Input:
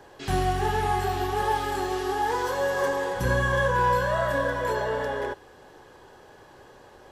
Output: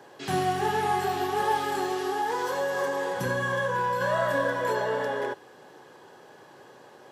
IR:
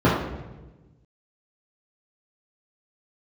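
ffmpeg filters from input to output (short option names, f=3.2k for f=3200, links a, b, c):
-filter_complex "[0:a]highpass=f=130:w=0.5412,highpass=f=130:w=1.3066,asettb=1/sr,asplit=3[a][b][c];[a]atrim=end=1.894[d];[b]atrim=start=1.89:end=4.01,asetpts=PTS-STARTPTS,afade=t=in:d=0.004:c=qsin,afade=t=out:st=2.116:d=0.004:c=qsin,acompressor=threshold=-24dB:ratio=6[e];[c]atrim=start=4.006[f];[d][e]acrossfade=d=0.004:c1=hsin:c2=qsin[g];[g][f]acrossfade=d=0.004:c1=qsin:c2=hsin"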